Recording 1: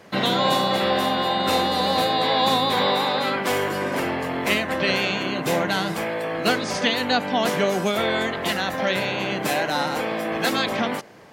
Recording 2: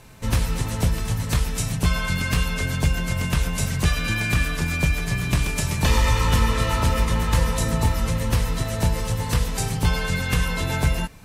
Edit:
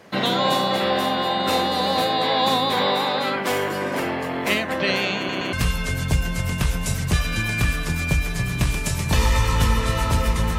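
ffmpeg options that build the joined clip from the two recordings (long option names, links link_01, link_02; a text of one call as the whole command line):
ffmpeg -i cue0.wav -i cue1.wav -filter_complex "[0:a]apad=whole_dur=10.58,atrim=end=10.58,asplit=3[link_01][link_02][link_03];[link_01]atrim=end=5.292[link_04];[link_02]atrim=start=5.168:end=5.292[link_05];[link_03]atrim=start=5.168:end=5.292[link_06];[1:a]atrim=start=2.248:end=7.3[link_07];[link_04][link_05]acrossfade=duration=0.004:curve1=hsin:curve2=hsin[link_08];[link_08][link_06]acrossfade=duration=0.004:curve1=hsin:curve2=hsin[link_09];[link_09][link_07]acrossfade=duration=0.004:curve1=hsin:curve2=hsin" out.wav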